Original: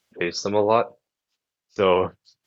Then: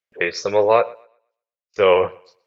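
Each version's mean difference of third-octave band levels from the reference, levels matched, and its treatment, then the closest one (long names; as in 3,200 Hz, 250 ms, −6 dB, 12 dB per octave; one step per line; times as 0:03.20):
3.0 dB: noise gate with hold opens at −52 dBFS
octave-band graphic EQ 250/500/2,000 Hz −9/+8/+9 dB
on a send: feedback echo with a high-pass in the loop 122 ms, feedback 27%, high-pass 190 Hz, level −23 dB
on the sum: level −1 dB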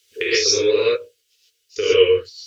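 10.5 dB: drawn EQ curve 100 Hz 0 dB, 190 Hz −26 dB, 440 Hz +11 dB, 730 Hz −28 dB, 1,300 Hz −5 dB, 2,900 Hz +12 dB
downward compressor 6 to 1, threshold −21 dBFS, peak gain reduction 10.5 dB
reverb whose tail is shaped and stops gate 160 ms rising, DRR −7.5 dB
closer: first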